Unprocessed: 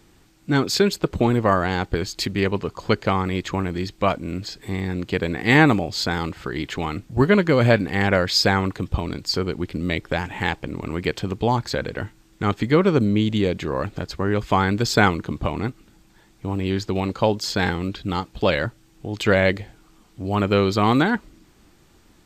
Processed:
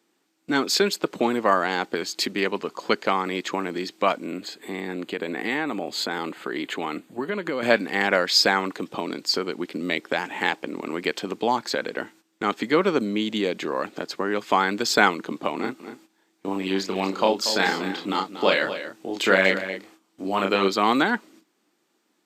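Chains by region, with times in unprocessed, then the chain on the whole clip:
4.26–7.63 bell 5500 Hz -14 dB 0.29 oct + compressor 5:1, threshold -22 dBFS
15.56–20.68 doubler 31 ms -3.5 dB + echo 0.236 s -12.5 dB
whole clip: HPF 240 Hz 24 dB/oct; gate -50 dBFS, range -13 dB; dynamic EQ 370 Hz, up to -4 dB, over -27 dBFS, Q 0.77; gain +1 dB

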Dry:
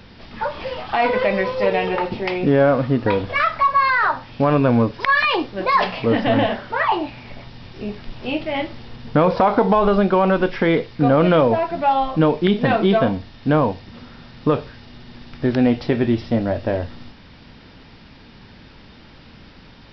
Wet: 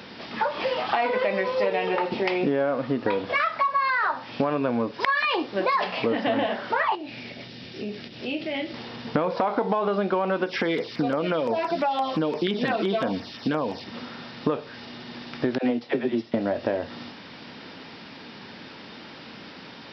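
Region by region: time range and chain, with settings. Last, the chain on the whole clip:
6.95–8.74 bell 1000 Hz -13.5 dB 1.1 oct + compressor 2.5:1, threshold -32 dBFS
10.44–13.84 high shelf 3300 Hz +10.5 dB + compressor 3:1, threshold -18 dBFS + LFO notch saw down 5.8 Hz 540–4900 Hz
15.58–16.34 HPF 120 Hz + dispersion lows, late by 64 ms, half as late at 470 Hz + upward expander, over -35 dBFS
whole clip: HPF 230 Hz 12 dB/oct; compressor 5:1, threshold -27 dBFS; gain +5 dB

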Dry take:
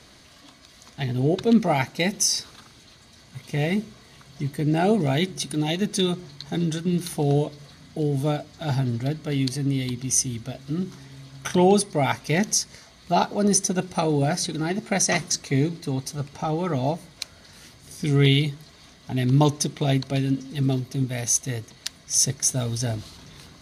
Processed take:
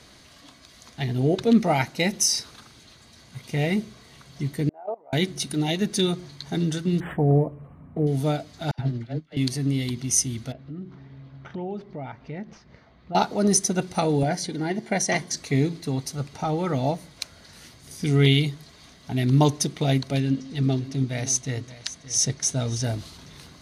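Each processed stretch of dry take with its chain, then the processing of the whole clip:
4.69–5.13 level quantiser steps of 19 dB + Butterworth band-pass 800 Hz, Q 1.5
7–8.07 brick-wall FIR band-stop 1300–8600 Hz + low shelf 160 Hz +5.5 dB + decimation joined by straight lines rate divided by 4×
8.71–9.37 LPF 4600 Hz + dispersion lows, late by 79 ms, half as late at 680 Hz + upward expander 2.5:1, over -37 dBFS
10.52–13.15 median filter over 5 samples + compressor 2:1, threshold -38 dBFS + tape spacing loss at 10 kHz 36 dB
14.23–15.37 high shelf 5600 Hz -7 dB + notch comb 1300 Hz
20.2–22.84 LPF 7000 Hz + echo 0.574 s -16 dB
whole clip: dry

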